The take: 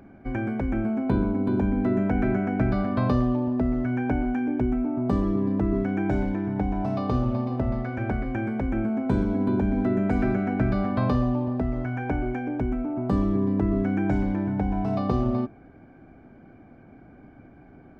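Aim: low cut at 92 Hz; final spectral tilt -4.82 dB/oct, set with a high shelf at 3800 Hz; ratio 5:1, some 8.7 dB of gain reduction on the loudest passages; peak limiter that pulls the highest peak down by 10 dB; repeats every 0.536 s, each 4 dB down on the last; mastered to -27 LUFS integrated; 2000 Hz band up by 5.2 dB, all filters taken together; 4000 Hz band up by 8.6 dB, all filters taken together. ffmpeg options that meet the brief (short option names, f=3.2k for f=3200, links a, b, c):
-af "highpass=92,equalizer=f=2k:t=o:g=4.5,highshelf=f=3.8k:g=5,equalizer=f=4k:t=o:g=6.5,acompressor=threshold=-29dB:ratio=5,alimiter=level_in=4dB:limit=-24dB:level=0:latency=1,volume=-4dB,aecho=1:1:536|1072|1608|2144|2680|3216|3752|4288|4824:0.631|0.398|0.25|0.158|0.0994|0.0626|0.0394|0.0249|0.0157,volume=7.5dB"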